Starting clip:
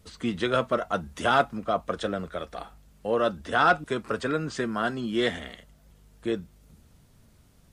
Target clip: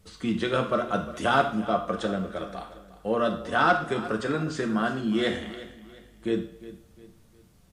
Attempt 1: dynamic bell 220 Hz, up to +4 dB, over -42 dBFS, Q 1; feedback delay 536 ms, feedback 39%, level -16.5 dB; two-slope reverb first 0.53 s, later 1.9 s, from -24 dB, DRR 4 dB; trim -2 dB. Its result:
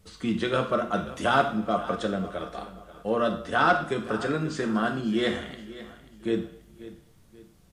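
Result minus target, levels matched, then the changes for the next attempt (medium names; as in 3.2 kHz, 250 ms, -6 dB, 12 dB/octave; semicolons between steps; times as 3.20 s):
echo 181 ms late
change: feedback delay 355 ms, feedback 39%, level -16.5 dB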